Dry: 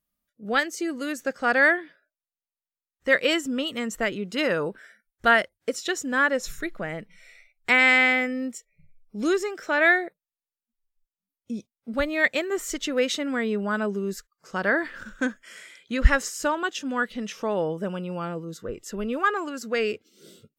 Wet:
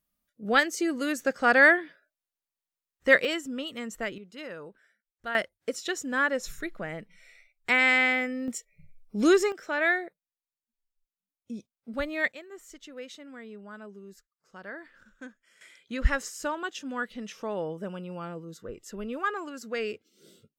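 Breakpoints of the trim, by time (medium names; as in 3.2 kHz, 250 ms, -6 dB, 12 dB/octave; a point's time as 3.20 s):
+1 dB
from 3.25 s -7 dB
from 4.18 s -16 dB
from 5.35 s -4 dB
from 8.48 s +3 dB
from 9.52 s -6 dB
from 12.32 s -18 dB
from 15.61 s -6.5 dB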